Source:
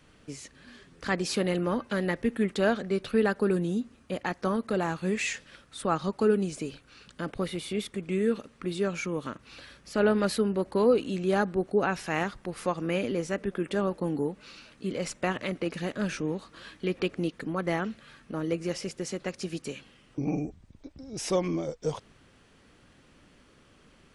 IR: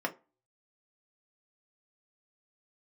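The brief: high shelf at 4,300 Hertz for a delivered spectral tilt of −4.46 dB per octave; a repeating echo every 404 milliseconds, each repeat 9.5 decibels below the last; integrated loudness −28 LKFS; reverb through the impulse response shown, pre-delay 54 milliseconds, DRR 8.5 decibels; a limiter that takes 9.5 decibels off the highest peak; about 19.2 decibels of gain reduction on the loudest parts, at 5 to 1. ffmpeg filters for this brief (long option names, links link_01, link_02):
-filter_complex "[0:a]highshelf=frequency=4300:gain=3,acompressor=threshold=-41dB:ratio=5,alimiter=level_in=12.5dB:limit=-24dB:level=0:latency=1,volume=-12.5dB,aecho=1:1:404|808|1212|1616:0.335|0.111|0.0365|0.012,asplit=2[link_01][link_02];[1:a]atrim=start_sample=2205,adelay=54[link_03];[link_02][link_03]afir=irnorm=-1:irlink=0,volume=-15dB[link_04];[link_01][link_04]amix=inputs=2:normalize=0,volume=18dB"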